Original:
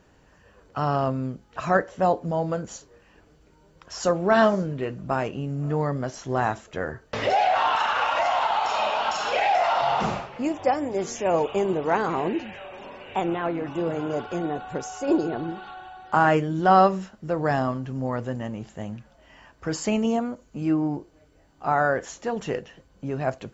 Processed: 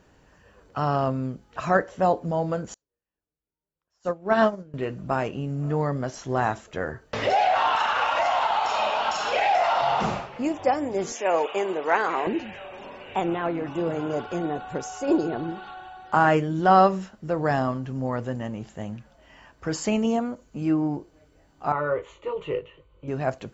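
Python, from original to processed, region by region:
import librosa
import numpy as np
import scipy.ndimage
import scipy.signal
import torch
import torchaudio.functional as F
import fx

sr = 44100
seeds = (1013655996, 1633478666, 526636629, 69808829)

y = fx.chain(x, sr, fx.high_shelf(hz=2700.0, db=-3.5),
    fx.upward_expand(threshold_db=-40.0, expansion=2.5), at=(2.74, 4.74))
y = fx.chain(y, sr, fx.highpass(hz=390.0, slope=12),
    fx.dynamic_eq(hz=1900.0, q=1.2, threshold_db=-42.0, ratio=4.0, max_db=6), at=(11.12, 12.27))
y = fx.chain(y, sr, fx.lowpass(hz=3700.0, slope=12),
    fx.fixed_phaser(hz=1100.0, stages=8),
    fx.doubler(ms=20.0, db=-6), at=(21.72, 23.08))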